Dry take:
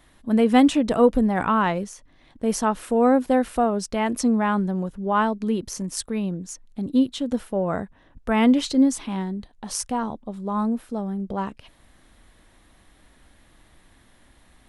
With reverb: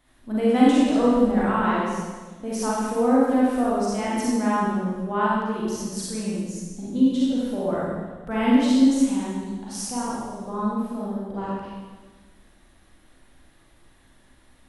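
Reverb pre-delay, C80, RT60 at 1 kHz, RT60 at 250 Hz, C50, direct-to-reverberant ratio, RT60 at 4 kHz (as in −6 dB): 35 ms, −0.5 dB, 1.3 s, 1.6 s, −4.0 dB, −7.0 dB, 1.3 s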